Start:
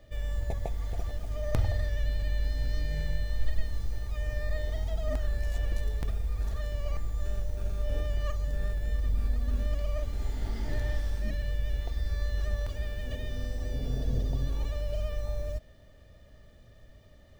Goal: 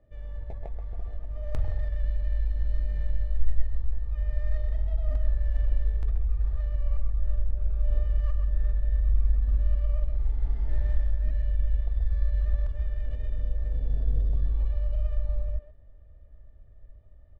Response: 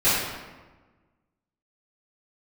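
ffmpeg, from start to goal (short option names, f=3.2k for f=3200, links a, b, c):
-filter_complex "[0:a]asplit=2[a][b];[b]adelay=130,highpass=300,lowpass=3.4k,asoftclip=type=hard:threshold=-24dB,volume=-6dB[c];[a][c]amix=inputs=2:normalize=0,asubboost=boost=6:cutoff=69,adynamicsmooth=sensitivity=5:basefreq=1.4k,volume=-7dB"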